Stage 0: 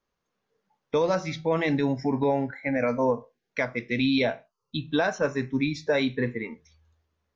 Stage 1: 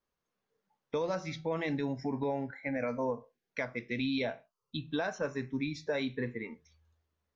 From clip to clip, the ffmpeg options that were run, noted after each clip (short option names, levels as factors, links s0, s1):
-af "acompressor=threshold=0.0398:ratio=1.5,volume=0.501"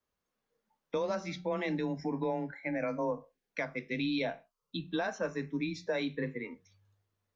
-af "afreqshift=20"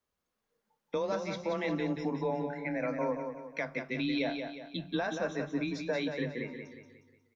-af "aecho=1:1:180|360|540|720|900:0.473|0.208|0.0916|0.0403|0.0177"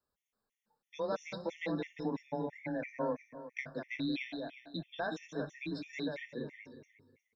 -af "afftfilt=real='re*gt(sin(2*PI*3*pts/sr)*(1-2*mod(floor(b*sr/1024/1800),2)),0)':imag='im*gt(sin(2*PI*3*pts/sr)*(1-2*mod(floor(b*sr/1024/1800),2)),0)':win_size=1024:overlap=0.75,volume=0.794"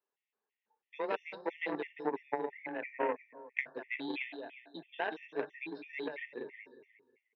-af "aeval=exprs='0.0708*(cos(1*acos(clip(val(0)/0.0708,-1,1)))-cos(1*PI/2))+0.0158*(cos(3*acos(clip(val(0)/0.0708,-1,1)))-cos(3*PI/2))':c=same,highpass=360,equalizer=f=400:t=q:w=4:g=10,equalizer=f=570:t=q:w=4:g=-3,equalizer=f=880:t=q:w=4:g=6,equalizer=f=1300:t=q:w=4:g=-3,equalizer=f=1900:t=q:w=4:g=7,equalizer=f=2700:t=q:w=4:g=8,lowpass=f=3400:w=0.5412,lowpass=f=3400:w=1.3066,volume=1.78"